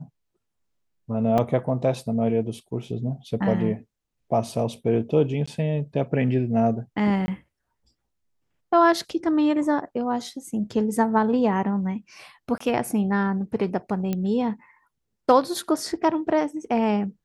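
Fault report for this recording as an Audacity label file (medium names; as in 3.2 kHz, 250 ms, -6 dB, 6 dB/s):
1.380000	1.380000	dropout 4.3 ms
5.460000	5.470000	dropout 15 ms
7.260000	7.280000	dropout 20 ms
12.580000	12.600000	dropout 24 ms
14.130000	14.130000	pop -14 dBFS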